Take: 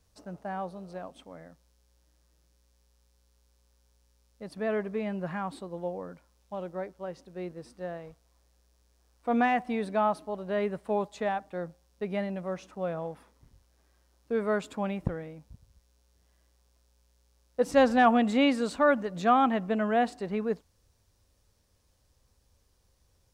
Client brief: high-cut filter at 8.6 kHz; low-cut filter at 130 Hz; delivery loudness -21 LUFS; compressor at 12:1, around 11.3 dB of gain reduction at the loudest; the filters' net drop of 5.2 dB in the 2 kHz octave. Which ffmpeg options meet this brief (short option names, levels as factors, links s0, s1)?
-af "highpass=130,lowpass=8600,equalizer=f=2000:t=o:g=-7,acompressor=threshold=0.0398:ratio=12,volume=5.62"